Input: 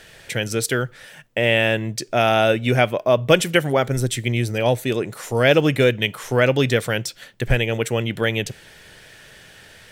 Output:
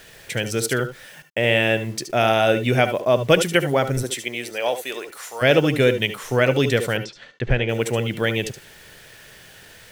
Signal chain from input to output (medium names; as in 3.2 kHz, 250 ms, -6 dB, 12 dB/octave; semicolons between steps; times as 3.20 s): 4.02–5.41 s: high-pass 340 Hz -> 960 Hz 12 dB/octave; bit crusher 8-bit; 6.97–7.69 s: Gaussian low-pass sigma 1.8 samples; reverberation, pre-delay 67 ms, DRR 11 dB; trim -1 dB